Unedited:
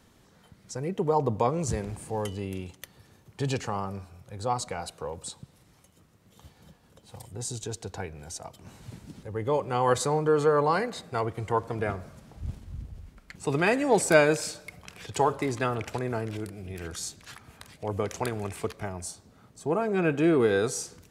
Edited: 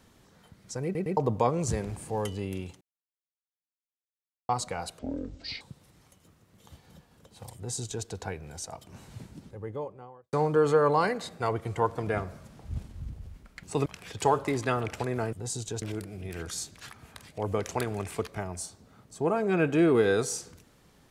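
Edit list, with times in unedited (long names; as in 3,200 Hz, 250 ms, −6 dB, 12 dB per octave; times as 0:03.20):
0:00.84: stutter in place 0.11 s, 3 plays
0:02.81–0:04.49: silence
0:04.99–0:05.33: play speed 55%
0:07.28–0:07.77: duplicate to 0:16.27
0:08.76–0:10.05: fade out and dull
0:13.58–0:14.80: remove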